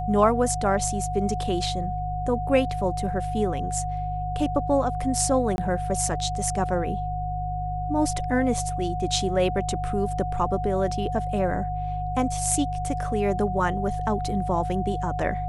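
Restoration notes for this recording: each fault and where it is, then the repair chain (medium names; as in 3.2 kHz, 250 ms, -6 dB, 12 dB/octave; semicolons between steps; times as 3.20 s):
hum 50 Hz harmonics 3 -31 dBFS
whine 730 Hz -29 dBFS
5.56–5.58 s: dropout 21 ms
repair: de-hum 50 Hz, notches 3; band-stop 730 Hz, Q 30; interpolate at 5.56 s, 21 ms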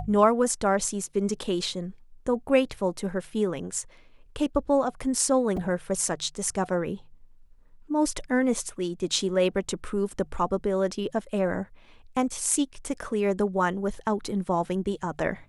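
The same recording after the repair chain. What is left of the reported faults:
nothing left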